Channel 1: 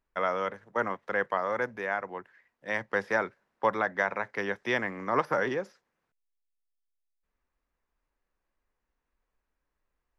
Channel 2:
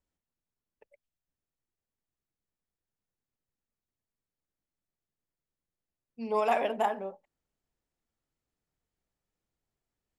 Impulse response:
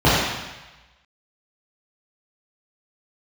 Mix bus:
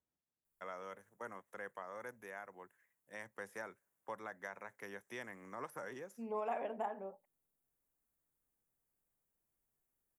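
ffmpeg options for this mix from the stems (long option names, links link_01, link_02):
-filter_complex "[0:a]adelay=450,volume=-15dB[link_01];[1:a]highpass=85,lowpass=1900,volume=-4.5dB[link_02];[link_01][link_02]amix=inputs=2:normalize=0,aexciter=amount=14.7:drive=4.1:freq=6900,acompressor=threshold=-48dB:ratio=1.5"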